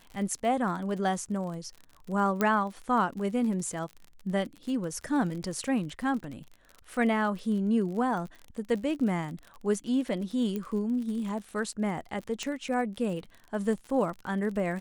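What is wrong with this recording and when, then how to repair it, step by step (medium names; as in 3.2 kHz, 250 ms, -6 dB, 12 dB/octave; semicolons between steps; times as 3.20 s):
crackle 47 per s -37 dBFS
2.41 s: pop -13 dBFS
10.56 s: pop -21 dBFS
12.43 s: pop -20 dBFS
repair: de-click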